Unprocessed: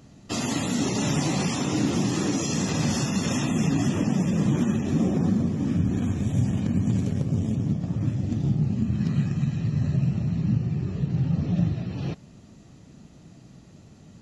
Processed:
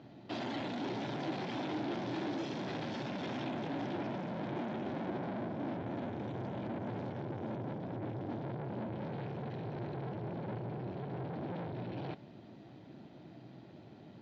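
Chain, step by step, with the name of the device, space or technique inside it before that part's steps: guitar amplifier (valve stage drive 36 dB, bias 0.4; tone controls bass -15 dB, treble -10 dB; cabinet simulation 95–4000 Hz, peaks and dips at 120 Hz +8 dB, 330 Hz +4 dB, 470 Hz -5 dB, 1.2 kHz -10 dB, 1.9 kHz -5 dB, 2.7 kHz -7 dB); trim +5.5 dB

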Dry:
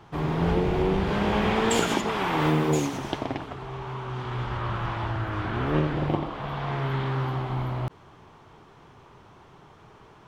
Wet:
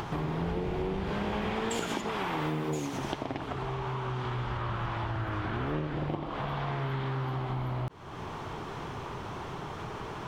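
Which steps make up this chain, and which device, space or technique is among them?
upward and downward compression (upward compressor, threshold -26 dBFS; compression 4:1, threshold -30 dBFS, peak gain reduction 10.5 dB)

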